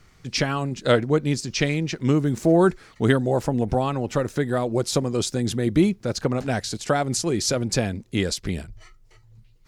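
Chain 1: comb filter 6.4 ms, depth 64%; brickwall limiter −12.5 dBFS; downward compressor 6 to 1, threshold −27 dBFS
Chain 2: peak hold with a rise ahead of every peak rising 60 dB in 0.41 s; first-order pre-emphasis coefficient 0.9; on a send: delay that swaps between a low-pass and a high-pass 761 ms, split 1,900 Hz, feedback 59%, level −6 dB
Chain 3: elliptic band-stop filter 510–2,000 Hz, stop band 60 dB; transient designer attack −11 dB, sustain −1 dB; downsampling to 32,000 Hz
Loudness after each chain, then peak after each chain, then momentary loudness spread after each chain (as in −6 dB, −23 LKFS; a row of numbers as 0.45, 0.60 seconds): −31.0, −32.0, −27.0 LKFS; −15.5, −11.5, −10.0 dBFS; 3, 11, 7 LU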